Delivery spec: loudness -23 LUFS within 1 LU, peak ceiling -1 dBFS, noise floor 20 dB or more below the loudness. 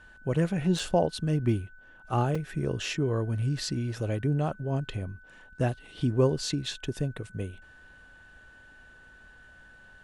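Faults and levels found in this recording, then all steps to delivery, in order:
dropouts 2; longest dropout 3.8 ms; steady tone 1.5 kHz; tone level -52 dBFS; loudness -29.5 LUFS; peak level -12.0 dBFS; loudness target -23.0 LUFS
-> interpolate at 0.79/2.35 s, 3.8 ms; band-stop 1.5 kHz, Q 30; trim +6.5 dB

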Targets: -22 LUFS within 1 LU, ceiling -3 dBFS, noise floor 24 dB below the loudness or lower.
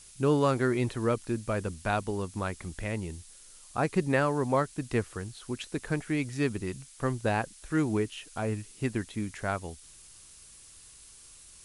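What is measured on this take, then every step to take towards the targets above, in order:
noise floor -53 dBFS; noise floor target -55 dBFS; loudness -31.0 LUFS; peak level -11.0 dBFS; loudness target -22.0 LUFS
-> noise reduction 6 dB, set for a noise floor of -53 dBFS; trim +9 dB; peak limiter -3 dBFS

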